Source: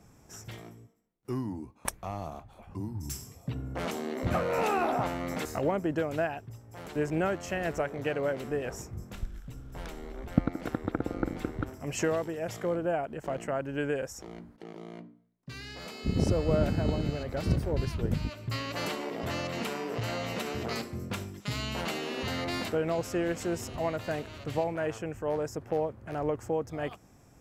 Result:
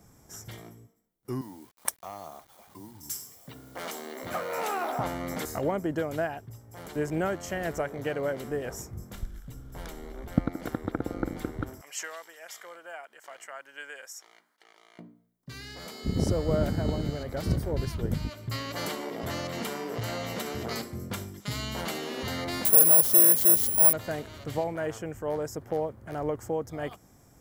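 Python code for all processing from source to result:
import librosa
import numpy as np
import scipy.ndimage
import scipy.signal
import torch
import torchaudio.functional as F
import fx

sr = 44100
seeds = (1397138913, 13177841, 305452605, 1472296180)

y = fx.chain(x, sr, fx.highpass(hz=670.0, slope=6),
    fx.quant_dither(seeds[0], bits=10, dither='none'), at=(1.41, 4.99))
y = fx.chain(y, sr, fx.highpass(hz=1400.0, slope=12),
    fx.high_shelf(hz=8700.0, db=-5.5), at=(11.81, 14.99))
y = fx.chain(y, sr, fx.resample_bad(factor=4, down='none', up='zero_stuff'),
    fx.transformer_sat(knee_hz=2700.0), at=(22.65, 23.93))
y = fx.high_shelf(y, sr, hz=10000.0, db=11.5)
y = fx.notch(y, sr, hz=2600.0, q=7.5)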